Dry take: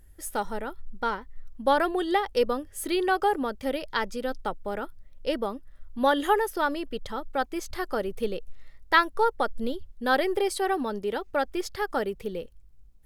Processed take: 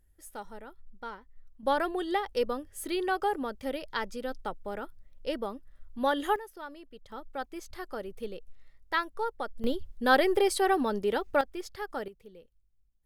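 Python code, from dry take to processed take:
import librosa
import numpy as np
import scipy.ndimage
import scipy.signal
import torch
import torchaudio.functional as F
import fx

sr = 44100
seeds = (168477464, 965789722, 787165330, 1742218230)

y = fx.gain(x, sr, db=fx.steps((0.0, -12.5), (1.63, -5.0), (6.36, -16.5), (7.12, -9.0), (9.64, 1.0), (11.41, -8.0), (12.08, -18.0)))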